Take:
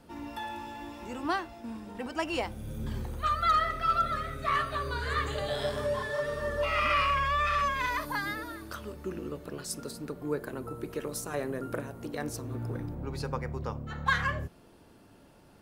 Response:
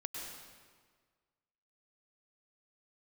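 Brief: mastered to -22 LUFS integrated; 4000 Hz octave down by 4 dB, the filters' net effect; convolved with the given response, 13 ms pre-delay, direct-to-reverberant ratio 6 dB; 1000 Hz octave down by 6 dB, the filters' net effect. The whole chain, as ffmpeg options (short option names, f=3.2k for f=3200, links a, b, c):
-filter_complex "[0:a]equalizer=f=1k:t=o:g=-7.5,equalizer=f=4k:t=o:g=-5,asplit=2[a][b];[1:a]atrim=start_sample=2205,adelay=13[c];[b][c]afir=irnorm=-1:irlink=0,volume=-6dB[d];[a][d]amix=inputs=2:normalize=0,volume=12.5dB"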